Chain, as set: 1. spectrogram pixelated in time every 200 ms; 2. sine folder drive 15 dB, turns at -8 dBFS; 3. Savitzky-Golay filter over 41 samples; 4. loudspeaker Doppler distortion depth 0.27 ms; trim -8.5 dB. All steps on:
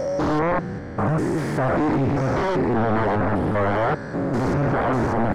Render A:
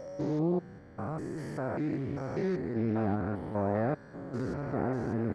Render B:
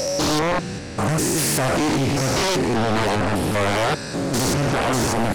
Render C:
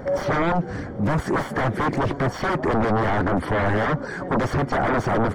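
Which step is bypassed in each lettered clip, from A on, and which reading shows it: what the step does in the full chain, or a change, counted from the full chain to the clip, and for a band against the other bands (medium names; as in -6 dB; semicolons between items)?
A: 2, 2 kHz band -5.5 dB; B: 3, 4 kHz band +16.5 dB; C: 1, 4 kHz band +4.5 dB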